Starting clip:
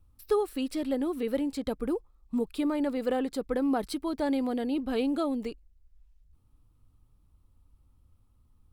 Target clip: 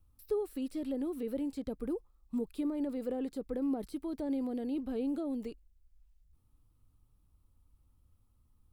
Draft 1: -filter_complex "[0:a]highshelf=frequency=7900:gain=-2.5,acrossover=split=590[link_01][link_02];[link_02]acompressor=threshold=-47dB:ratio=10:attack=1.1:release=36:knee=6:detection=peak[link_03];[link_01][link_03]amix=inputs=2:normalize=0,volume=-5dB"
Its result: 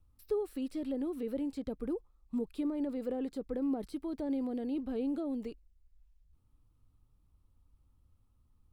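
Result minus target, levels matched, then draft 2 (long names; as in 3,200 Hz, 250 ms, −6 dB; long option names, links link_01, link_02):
8,000 Hz band −2.5 dB
-filter_complex "[0:a]highshelf=frequency=7900:gain=6.5,acrossover=split=590[link_01][link_02];[link_02]acompressor=threshold=-47dB:ratio=10:attack=1.1:release=36:knee=6:detection=peak[link_03];[link_01][link_03]amix=inputs=2:normalize=0,volume=-5dB"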